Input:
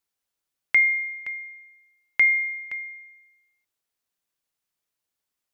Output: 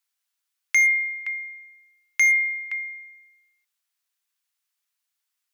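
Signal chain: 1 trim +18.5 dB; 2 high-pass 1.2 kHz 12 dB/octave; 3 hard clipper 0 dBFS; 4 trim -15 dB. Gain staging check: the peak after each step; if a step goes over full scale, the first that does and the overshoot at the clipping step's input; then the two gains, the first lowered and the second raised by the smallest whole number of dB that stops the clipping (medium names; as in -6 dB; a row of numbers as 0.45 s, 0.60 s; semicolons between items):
+7.5 dBFS, +7.5 dBFS, 0.0 dBFS, -15.0 dBFS; step 1, 7.5 dB; step 1 +10.5 dB, step 4 -7 dB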